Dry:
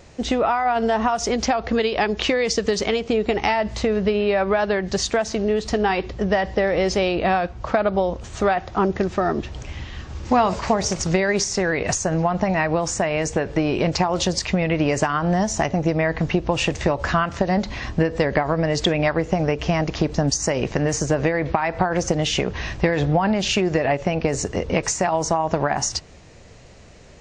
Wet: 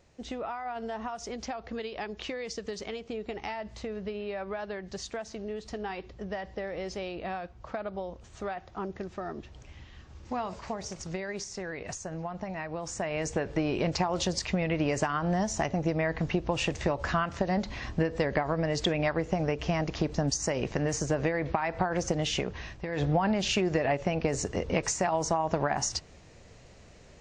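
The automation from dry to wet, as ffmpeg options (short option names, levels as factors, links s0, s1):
-af "volume=1.5,afade=t=in:st=12.72:d=0.6:silence=0.398107,afade=t=out:st=22.34:d=0.52:silence=0.298538,afade=t=in:st=22.86:d=0.17:silence=0.266073"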